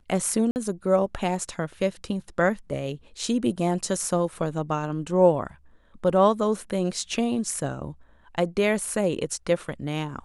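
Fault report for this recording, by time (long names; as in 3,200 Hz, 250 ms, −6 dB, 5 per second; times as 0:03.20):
0:00.51–0:00.56: drop-out 49 ms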